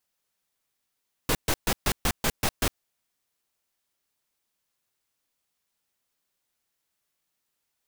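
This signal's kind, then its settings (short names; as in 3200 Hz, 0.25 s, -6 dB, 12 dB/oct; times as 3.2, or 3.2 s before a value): noise bursts pink, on 0.06 s, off 0.13 s, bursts 8, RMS -23.5 dBFS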